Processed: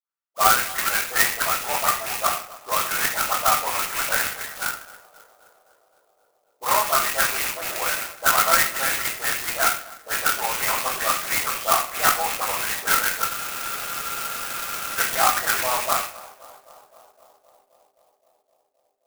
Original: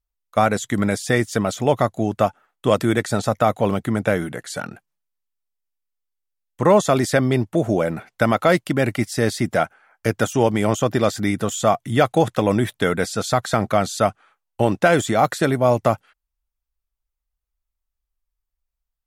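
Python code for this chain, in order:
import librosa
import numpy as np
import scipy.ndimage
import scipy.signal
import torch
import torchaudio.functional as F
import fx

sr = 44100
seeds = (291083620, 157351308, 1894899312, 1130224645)

p1 = fx.rattle_buzz(x, sr, strikes_db=-27.0, level_db=-17.0)
p2 = scipy.signal.sosfilt(scipy.signal.butter(4, 4400.0, 'lowpass', fs=sr, output='sos'), p1)
p3 = fx.notch(p2, sr, hz=2400.0, q=21.0)
p4 = fx.level_steps(p3, sr, step_db=11)
p5 = p3 + (p4 * 10.0 ** (0.5 / 20.0))
p6 = fx.ladder_highpass(p5, sr, hz=930.0, resonance_pct=25)
p7 = fx.dispersion(p6, sr, late='highs', ms=116.0, hz=1900.0)
p8 = fx.echo_tape(p7, sr, ms=261, feedback_pct=89, wet_db=-17.0, lp_hz=1200.0, drive_db=15.0, wow_cents=14)
p9 = fx.room_shoebox(p8, sr, seeds[0], volume_m3=52.0, walls='mixed', distance_m=0.67)
p10 = fx.spec_freeze(p9, sr, seeds[1], at_s=13.31, hold_s=1.68)
p11 = fx.clock_jitter(p10, sr, seeds[2], jitter_ms=0.08)
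y = p11 * 10.0 ** (2.5 / 20.0)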